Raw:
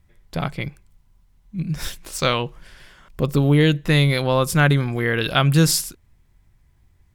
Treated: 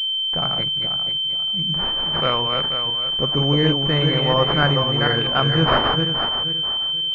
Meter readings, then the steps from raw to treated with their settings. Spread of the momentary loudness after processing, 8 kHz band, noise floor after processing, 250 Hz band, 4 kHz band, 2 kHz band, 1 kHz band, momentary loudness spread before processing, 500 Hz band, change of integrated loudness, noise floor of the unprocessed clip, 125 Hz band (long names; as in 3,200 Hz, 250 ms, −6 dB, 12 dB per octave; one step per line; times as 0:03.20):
3 LU, below −25 dB, −23 dBFS, −2.5 dB, +13.0 dB, −1.0 dB, +4.5 dB, 16 LU, +1.0 dB, +1.5 dB, −59 dBFS, −3.0 dB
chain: feedback delay that plays each chunk backwards 242 ms, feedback 54%, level −4 dB
tilt shelving filter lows −6 dB, about 640 Hz
switching amplifier with a slow clock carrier 3,100 Hz